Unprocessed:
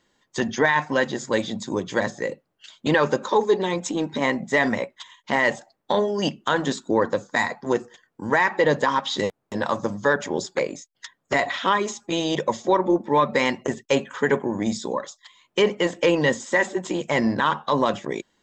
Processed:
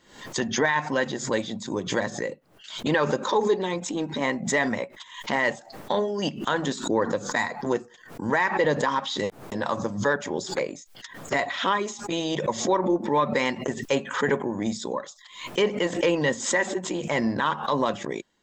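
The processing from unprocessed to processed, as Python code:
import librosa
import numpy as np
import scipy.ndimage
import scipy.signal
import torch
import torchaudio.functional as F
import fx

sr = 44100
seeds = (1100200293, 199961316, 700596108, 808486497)

y = fx.pre_swell(x, sr, db_per_s=99.0)
y = y * 10.0 ** (-3.5 / 20.0)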